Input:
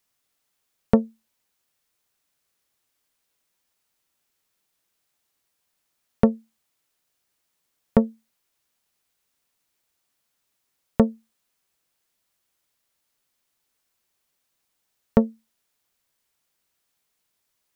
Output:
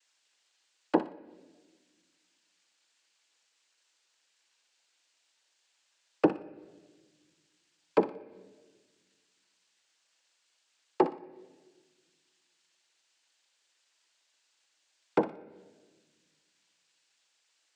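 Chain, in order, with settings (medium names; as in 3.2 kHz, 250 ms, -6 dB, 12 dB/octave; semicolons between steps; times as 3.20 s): low-pass that closes with the level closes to 610 Hz, closed at -24 dBFS; high-pass 360 Hz 24 dB/octave; noise-vocoded speech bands 8; thinning echo 60 ms, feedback 32%, high-pass 1.1 kHz, level -9.5 dB; reverberation RT60 1.4 s, pre-delay 6 ms, DRR 13.5 dB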